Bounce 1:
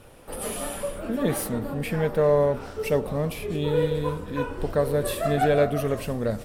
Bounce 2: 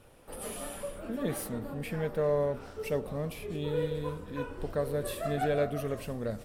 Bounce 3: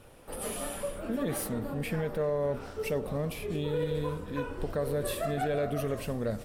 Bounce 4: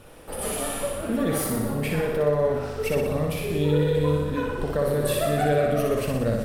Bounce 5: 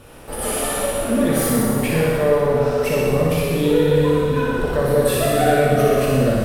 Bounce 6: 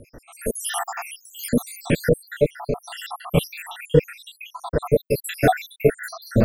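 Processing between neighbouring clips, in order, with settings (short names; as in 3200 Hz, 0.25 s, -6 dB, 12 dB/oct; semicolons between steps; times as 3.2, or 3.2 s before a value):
dynamic EQ 900 Hz, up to -3 dB, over -41 dBFS, Q 4.4; gain -8 dB
limiter -25.5 dBFS, peak gain reduction 7 dB; gain +3.5 dB
flutter echo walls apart 10.4 m, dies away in 1 s; gain +5.5 dB
plate-style reverb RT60 1.8 s, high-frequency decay 1×, DRR -1.5 dB; gain +3.5 dB
random spectral dropouts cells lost 83%; rotary speaker horn 0.8 Hz, later 5 Hz, at 2.72; gain +5 dB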